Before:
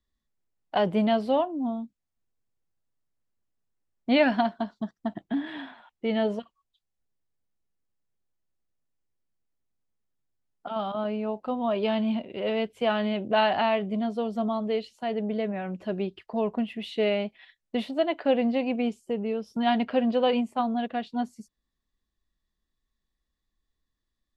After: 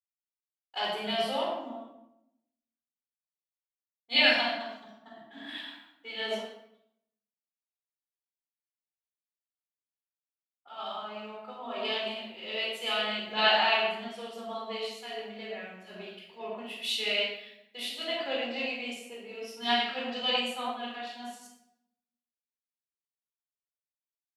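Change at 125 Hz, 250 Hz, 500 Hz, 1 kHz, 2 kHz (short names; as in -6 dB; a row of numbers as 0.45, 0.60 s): under -15 dB, -14.5 dB, -8.0 dB, -4.0 dB, +4.0 dB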